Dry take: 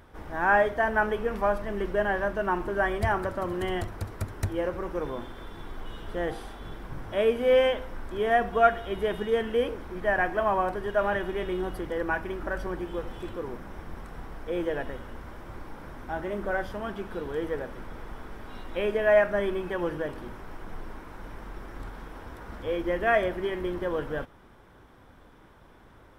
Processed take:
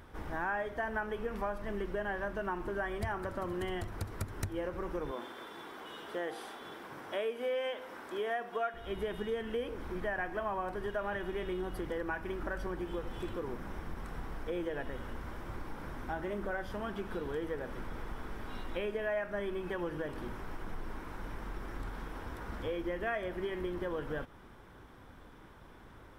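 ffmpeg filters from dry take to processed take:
-filter_complex "[0:a]asettb=1/sr,asplit=3[a][b][c];[a]atrim=end=5.114[d];[b]atrim=start=5.11:end=8.74,asetpts=PTS-STARTPTS,afade=t=in:d=0.004:c=qsin,afade=t=out:st=3.626:d=0.004:c=qsin,highpass=340[e];[c]atrim=start=8.736[f];[d][e]acrossfade=d=0.004:c1=hsin:c2=qsin[g];[g][f]acrossfade=d=0.004:c1=qsin:c2=hsin,equalizer=f=620:t=o:w=0.77:g=-2.5,acompressor=threshold=-34dB:ratio=4"

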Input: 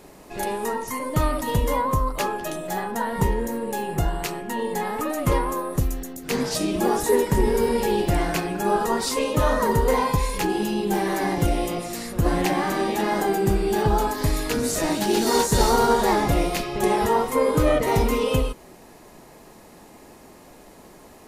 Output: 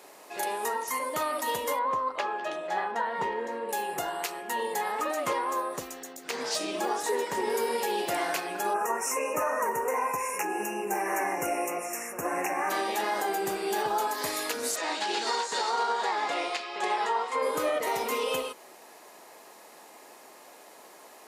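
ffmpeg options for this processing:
-filter_complex "[0:a]asettb=1/sr,asplit=3[a][b][c];[a]atrim=end=1.794[d];[b]atrim=start=1.79:end=3.69,asetpts=PTS-STARTPTS,afade=t=in:d=0.004:c=qsin,afade=t=out:st=1.896:d=0.004:c=qsin,lowpass=3.4k[e];[c]atrim=start=3.686[f];[d][e]acrossfade=d=0.004:c1=hsin:c2=qsin[g];[g][f]acrossfade=d=0.004:c1=qsin:c2=hsin,asettb=1/sr,asplit=3[h][i][j];[h]atrim=end=4.924[k];[i]atrim=start=4.92:end=7.5,asetpts=PTS-STARTPTS,afade=t=in:d=0.004:c=qsin,afade=t=out:st=2.576:d=0.004:c=qsin,equalizer=f=12k:t=o:w=0.57:g=-11[l];[j]atrim=start=7.496[m];[k][l]acrossfade=d=0.004:c1=hsin:c2=qsin[n];[n][m]acrossfade=d=0.004:c1=qsin:c2=hsin,asplit=3[o][p][q];[o]afade=t=out:st=8.73:d=0.02[r];[p]asuperstop=centerf=3900:order=20:qfactor=1.5,afade=t=in:st=8.73:d=0.02,afade=t=out:st=12.69:d=0.02[s];[q]afade=t=in:st=12.69:d=0.02[t];[r][s][t]amix=inputs=3:normalize=0,asplit=3[u][v][w];[u]afade=t=out:st=14.75:d=0.02[x];[v]highpass=340,equalizer=f=380:t=q:w=4:g=-4,equalizer=f=610:t=q:w=4:g=-6,equalizer=f=5.9k:t=q:w=4:g=-7,lowpass=f=6.8k:w=0.5412,lowpass=f=6.8k:w=1.3066,afade=t=in:st=14.75:d=0.02,afade=t=out:st=17.41:d=0.02[y];[w]afade=t=in:st=17.41:d=0.02[z];[x][y][z]amix=inputs=3:normalize=0,highpass=560,alimiter=limit=-19dB:level=0:latency=1:release=213"

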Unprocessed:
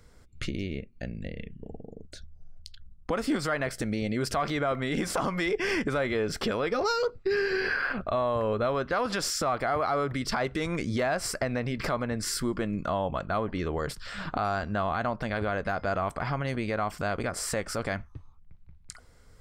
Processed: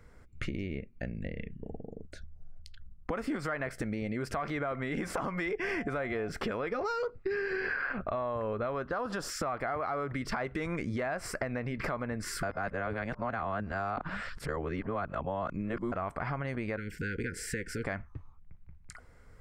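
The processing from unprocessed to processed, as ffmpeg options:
-filter_complex "[0:a]asettb=1/sr,asplit=3[a][b][c];[a]atrim=end=5.634[d];[b]atrim=start=5.63:end=6.29,asetpts=PTS-STARTPTS,afade=t=in:d=0.004:c=qsin,afade=t=out:st=0.656:d=0.004:c=qsin,aeval=exprs='val(0)+0.00891*sin(2*PI*700*n/s)':c=same[e];[c]atrim=start=6.286[f];[d][e]acrossfade=d=0.004:c1=hsin:c2=qsin[g];[g][f]acrossfade=d=0.004:c1=qsin:c2=hsin,asettb=1/sr,asplit=3[h][i][j];[h]atrim=end=8.844[k];[i]atrim=start=8.84:end=9.29,asetpts=PTS-STARTPTS,afade=t=in:d=0.004:c=qsin,afade=t=out:st=0.446:d=0.004:c=qsin,equalizer=f=2.2k:t=o:w=0.44:g=-12.5[l];[j]atrim=start=9.286[m];[k][l]acrossfade=d=0.004:c1=hsin:c2=qsin[n];[n][m]acrossfade=d=0.004:c1=qsin:c2=hsin,asettb=1/sr,asplit=3[o][p][q];[o]atrim=end=16.774[r];[p]atrim=start=16.77:end=17.84,asetpts=PTS-STARTPTS,afade=t=in:d=0.004:c=qsin,afade=t=out:st=1.066:d=0.004:c=qsin,asuperstop=centerf=850:order=20:qfactor=0.88[s];[q]atrim=start=17.836[t];[r][s]acrossfade=d=0.004:c1=hsin:c2=qsin[u];[u][t]acrossfade=d=0.004:c1=qsin:c2=hsin,asplit=3[v][w][x];[v]atrim=end=12.432[y];[w]atrim=start=12.428:end=15.922,asetpts=PTS-STARTPTS,areverse[z];[x]atrim=start=15.918[aa];[y][z]acrossfade=d=0.004:c1=hsin:c2=hsin[ab];[ab][aa]acrossfade=d=0.004:c1=hsin:c2=hsin,highshelf=f=2.8k:t=q:w=1.5:g=-7,acompressor=threshold=-31dB:ratio=4"

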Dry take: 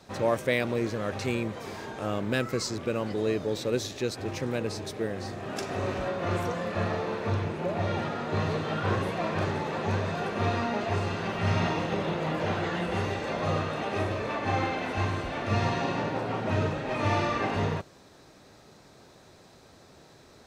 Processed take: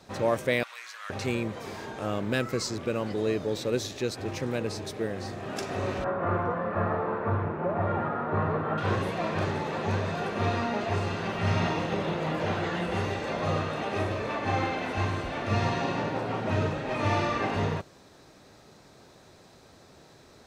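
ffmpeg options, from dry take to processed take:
-filter_complex "[0:a]asettb=1/sr,asplit=3[a][b][c];[a]atrim=end=0.634[d];[b]atrim=start=0.63:end=1.1,asetpts=PTS-STARTPTS,afade=t=in:d=0.004:c=qsin,afade=t=out:st=0.466:d=0.004:c=qsin,highpass=f=1.2k:w=0.5412,highpass=f=1.2k:w=1.3066[e];[c]atrim=start=1.096[f];[d][e]acrossfade=d=0.004:c1=hsin:c2=qsin[g];[g][f]acrossfade=d=0.004:c1=qsin:c2=hsin,asettb=1/sr,asplit=3[h][i][j];[h]atrim=end=6.044[k];[i]atrim=start=6.04:end=8.78,asetpts=PTS-STARTPTS,afade=t=in:d=0.004:c=qsin,afade=t=out:st=2.736:d=0.004:c=qsin,lowpass=f=1.3k:t=q:w=1.8[l];[j]atrim=start=8.776[m];[k][l]acrossfade=d=0.004:c1=hsin:c2=qsin[n];[n][m]acrossfade=d=0.004:c1=qsin:c2=hsin"

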